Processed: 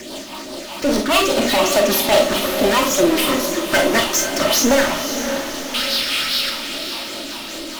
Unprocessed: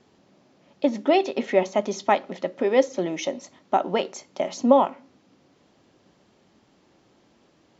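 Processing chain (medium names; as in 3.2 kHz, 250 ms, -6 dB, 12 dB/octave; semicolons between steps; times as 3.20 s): comb filter that takes the minimum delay 3.3 ms; high-pass 290 Hz 12 dB/octave; treble shelf 4.9 kHz +11 dB; hum notches 60/120/180/240/300/360/420/480/540 Hz; waveshaping leveller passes 2; painted sound noise, 5.74–6.50 s, 1.2–5.6 kHz -35 dBFS; phase shifter stages 6, 2.4 Hz, lowest notch 430–2100 Hz; power-law waveshaper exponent 0.35; rotary cabinet horn 5 Hz; echo that smears into a reverb 539 ms, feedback 51%, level -8 dB; on a send at -2.5 dB: reverberation RT60 0.25 s, pre-delay 5 ms; on the sum: trim -1.5 dB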